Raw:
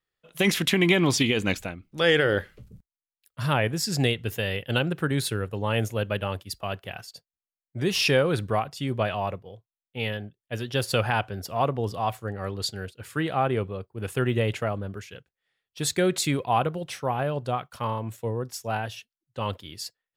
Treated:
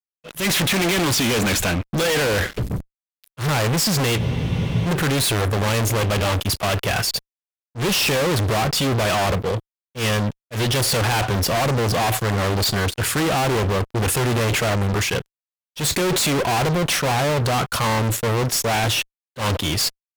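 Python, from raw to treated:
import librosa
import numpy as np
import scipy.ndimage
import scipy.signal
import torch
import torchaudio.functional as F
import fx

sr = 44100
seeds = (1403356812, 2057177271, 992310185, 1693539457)

y = fx.fuzz(x, sr, gain_db=48.0, gate_db=-56.0)
y = fx.auto_swell(y, sr, attack_ms=105.0)
y = fx.spec_freeze(y, sr, seeds[0], at_s=4.2, hold_s=0.66)
y = y * librosa.db_to_amplitude(-5.5)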